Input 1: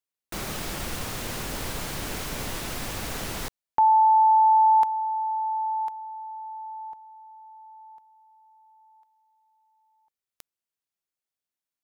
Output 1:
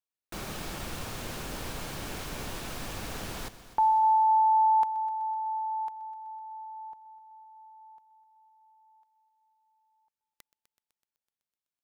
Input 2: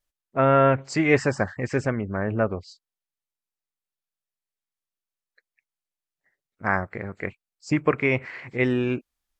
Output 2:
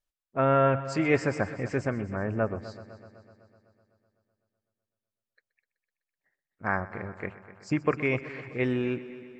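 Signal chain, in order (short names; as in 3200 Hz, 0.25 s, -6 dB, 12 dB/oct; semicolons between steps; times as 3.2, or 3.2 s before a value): high shelf 5600 Hz -4 dB; notch 2000 Hz, Q 20; on a send: multi-head echo 0.126 s, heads first and second, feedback 61%, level -18.5 dB; on the sum: gain -4.5 dB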